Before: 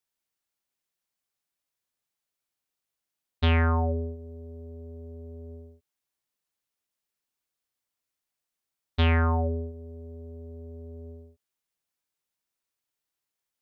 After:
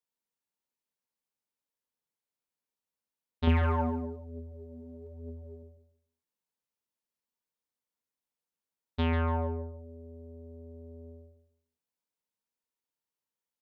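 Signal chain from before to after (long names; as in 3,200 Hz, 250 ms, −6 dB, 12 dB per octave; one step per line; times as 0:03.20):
hollow resonant body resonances 220/470/910 Hz, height 8 dB, ringing for 20 ms
0:03.47–0:05.63: phase shifter 1.1 Hz, delay 4.6 ms, feedback 54%
repeating echo 144 ms, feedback 26%, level −10 dB
level −9 dB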